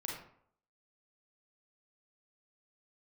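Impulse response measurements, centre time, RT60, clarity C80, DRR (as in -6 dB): 46 ms, 0.65 s, 6.5 dB, -2.5 dB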